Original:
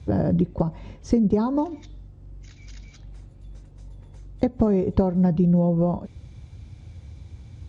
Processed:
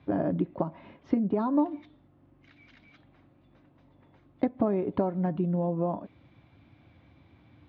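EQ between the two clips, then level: cabinet simulation 170–3500 Hz, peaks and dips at 290 Hz +8 dB, 660 Hz +6 dB, 1.1 kHz +5 dB; peaking EQ 1.8 kHz +6 dB 1.9 oct; band-stop 470 Hz, Q 12; -8.0 dB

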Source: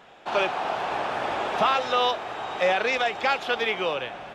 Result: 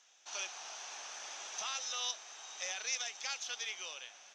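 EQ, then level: band-pass filter 6.1 kHz, Q 11; +13.5 dB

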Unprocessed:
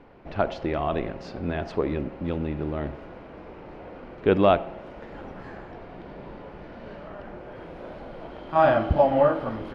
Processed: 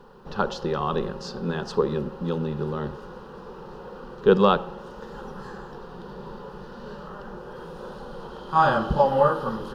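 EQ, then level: treble shelf 3 kHz +11 dB; static phaser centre 440 Hz, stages 8; +4.5 dB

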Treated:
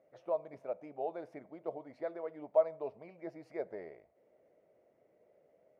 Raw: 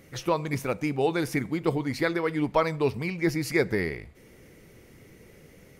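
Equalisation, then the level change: band-pass filter 630 Hz, Q 7.5; 0.0 dB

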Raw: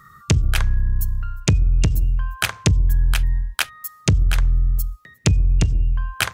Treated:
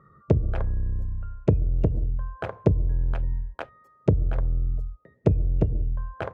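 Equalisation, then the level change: band-pass filter 530 Hz, Q 2.3; tilt EQ -4 dB/octave; +3.5 dB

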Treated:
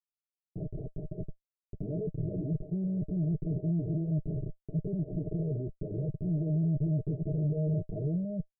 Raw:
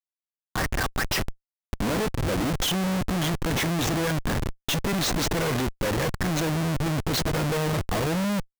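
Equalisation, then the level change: rippled Chebyshev low-pass 640 Hz, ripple 9 dB; static phaser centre 340 Hz, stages 8; 0.0 dB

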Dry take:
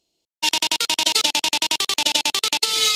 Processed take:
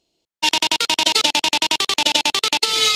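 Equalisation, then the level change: treble shelf 4.6 kHz -6.5 dB; treble shelf 11 kHz -4 dB; +5.0 dB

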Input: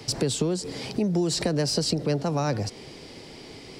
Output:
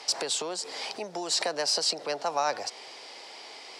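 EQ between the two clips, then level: resonant high-pass 790 Hz, resonance Q 1.6; distance through air 52 m; treble shelf 4.3 kHz +7 dB; 0.0 dB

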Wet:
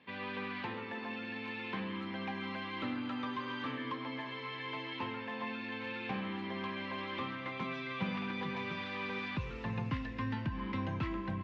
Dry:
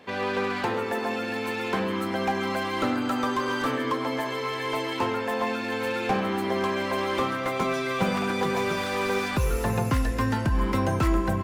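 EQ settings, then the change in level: cabinet simulation 110–3600 Hz, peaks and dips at 390 Hz -4 dB, 720 Hz -6 dB, 1.4 kHz -8 dB; peaking EQ 520 Hz -8.5 dB 1.5 oct; -7.0 dB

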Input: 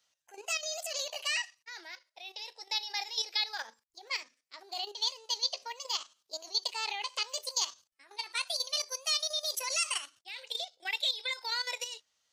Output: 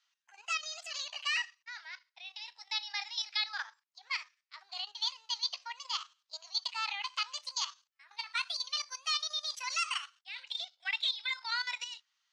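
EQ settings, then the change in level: high-pass 1 kHz 24 dB/octave; dynamic bell 1.3 kHz, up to +6 dB, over -57 dBFS, Q 4.6; distance through air 130 m; +2.0 dB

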